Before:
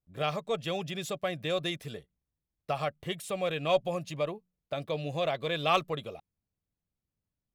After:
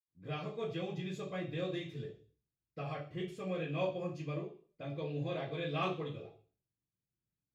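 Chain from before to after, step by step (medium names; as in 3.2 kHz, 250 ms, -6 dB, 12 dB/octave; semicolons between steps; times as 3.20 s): 2.74–4.87 s: band-stop 3.8 kHz, Q 9.9; reverberation RT60 0.40 s, pre-delay 76 ms, DRR -60 dB; trim +1.5 dB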